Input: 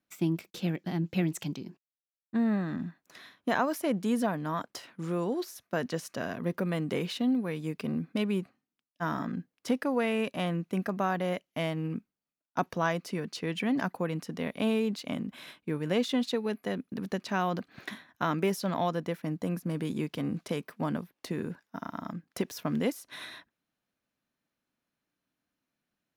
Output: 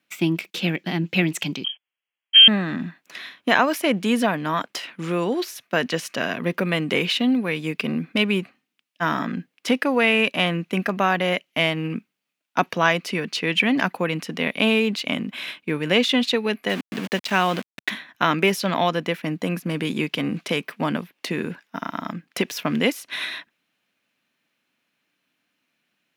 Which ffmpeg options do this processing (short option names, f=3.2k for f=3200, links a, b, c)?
-filter_complex "[0:a]asettb=1/sr,asplit=3[a][b][c];[a]atrim=end=1.644[d];[b]atrim=start=1.64:end=2.48,asetpts=PTS-STARTPTS,afade=t=in:d=0.004:c=qsin,afade=t=out:st=0.836:d=0.004:c=qsin,lowpass=f=2.9k:t=q:w=0.5098,lowpass=f=2.9k:t=q:w=0.6013,lowpass=f=2.9k:t=q:w=0.9,lowpass=f=2.9k:t=q:w=2.563,afreqshift=-3400[e];[c]atrim=start=2.476[f];[d][e]acrossfade=d=0.004:c1=hsin:c2=qsin[g];[g][f]acrossfade=d=0.004:c1=qsin:c2=hsin,asettb=1/sr,asplit=3[h][i][j];[h]atrim=end=16.694[k];[i]atrim=start=16.69:end=17.9,asetpts=PTS-STARTPTS,afade=t=in:d=0.004:c=qsin,afade=t=out:st=1.206:d=0.004:c=qsin,aeval=exprs='val(0)*gte(abs(val(0)),0.01)':c=same[l];[j]atrim=start=17.896[m];[k][l]acrossfade=d=0.004:c1=hsin:c2=qsin[n];[n][m]acrossfade=d=0.004:c1=qsin:c2=hsin,highpass=150,equalizer=f=2.6k:w=1.1:g=11,volume=7.5dB"